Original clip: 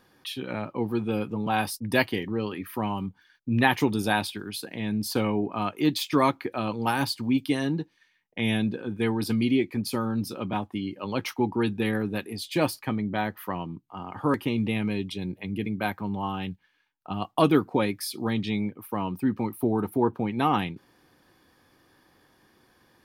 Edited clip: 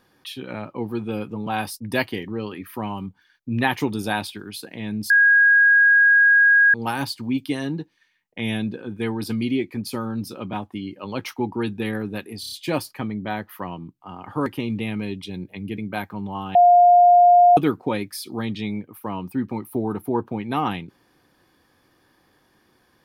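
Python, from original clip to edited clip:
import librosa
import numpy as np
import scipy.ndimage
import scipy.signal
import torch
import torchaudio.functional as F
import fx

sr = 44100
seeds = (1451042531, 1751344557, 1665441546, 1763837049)

y = fx.edit(x, sr, fx.bleep(start_s=5.1, length_s=1.64, hz=1640.0, db=-11.0),
    fx.stutter(start_s=12.4, slice_s=0.03, count=5),
    fx.bleep(start_s=16.43, length_s=1.02, hz=707.0, db=-9.0), tone=tone)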